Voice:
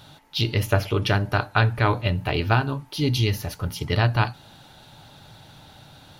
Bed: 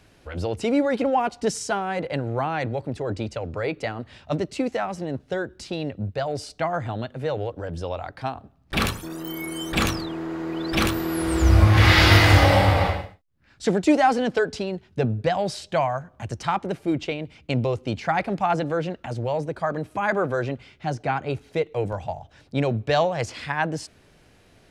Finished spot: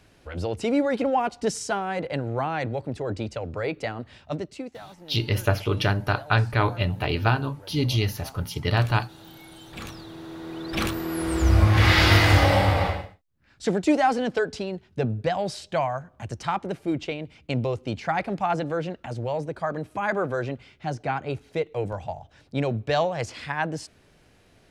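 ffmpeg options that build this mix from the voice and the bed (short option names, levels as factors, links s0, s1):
-filter_complex "[0:a]adelay=4750,volume=0.841[s0];[1:a]volume=4.22,afade=t=out:st=4.06:d=0.73:silence=0.177828,afade=t=in:st=9.8:d=1.43:silence=0.199526[s1];[s0][s1]amix=inputs=2:normalize=0"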